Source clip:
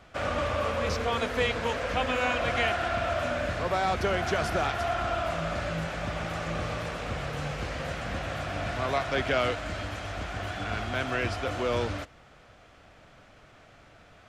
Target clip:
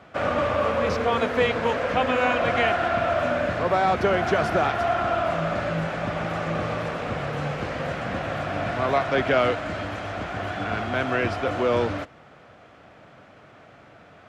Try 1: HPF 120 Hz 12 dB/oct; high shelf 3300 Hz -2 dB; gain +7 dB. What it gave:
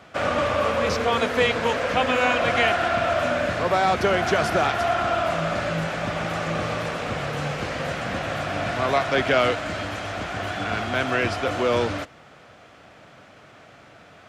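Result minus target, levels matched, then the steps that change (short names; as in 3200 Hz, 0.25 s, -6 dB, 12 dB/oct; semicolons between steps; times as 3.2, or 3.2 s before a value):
8000 Hz band +7.5 dB
change: high shelf 3300 Hz -12.5 dB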